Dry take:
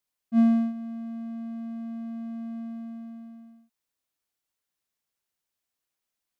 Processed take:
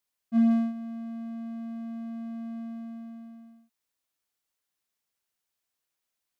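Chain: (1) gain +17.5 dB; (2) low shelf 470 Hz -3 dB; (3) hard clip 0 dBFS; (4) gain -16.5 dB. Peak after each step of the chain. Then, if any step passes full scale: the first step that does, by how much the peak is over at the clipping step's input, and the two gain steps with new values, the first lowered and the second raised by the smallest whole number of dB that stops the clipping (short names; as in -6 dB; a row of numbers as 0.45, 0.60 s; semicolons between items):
+5.5, +3.5, 0.0, -16.5 dBFS; step 1, 3.5 dB; step 1 +13.5 dB, step 4 -12.5 dB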